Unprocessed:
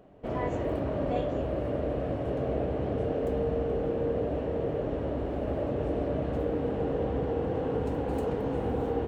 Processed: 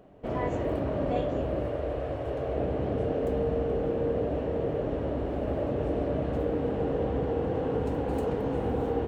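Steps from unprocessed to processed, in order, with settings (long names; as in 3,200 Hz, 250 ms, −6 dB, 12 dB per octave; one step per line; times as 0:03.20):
0:01.68–0:02.57: parametric band 200 Hz −14 dB 0.84 octaves
level +1 dB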